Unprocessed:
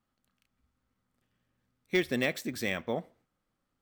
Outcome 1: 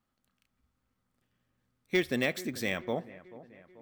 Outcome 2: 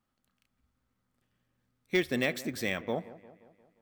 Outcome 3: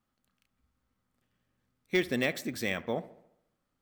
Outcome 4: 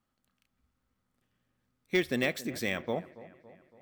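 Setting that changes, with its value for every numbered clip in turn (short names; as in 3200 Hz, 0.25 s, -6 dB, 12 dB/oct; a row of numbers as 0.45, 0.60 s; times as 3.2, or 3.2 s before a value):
dark delay, time: 437, 176, 70, 280 ms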